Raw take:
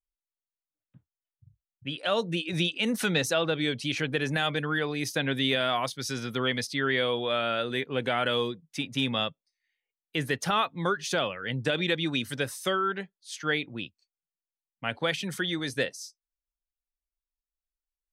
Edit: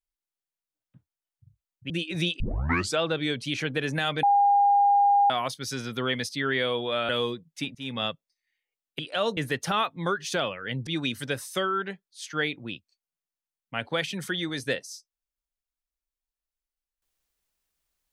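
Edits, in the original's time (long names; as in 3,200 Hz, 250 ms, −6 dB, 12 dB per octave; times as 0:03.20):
0:01.90–0:02.28: move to 0:10.16
0:02.78: tape start 0.59 s
0:04.61–0:05.68: beep over 808 Hz −16.5 dBFS
0:07.47–0:08.26: remove
0:08.92–0:09.23: fade in, from −20 dB
0:11.66–0:11.97: remove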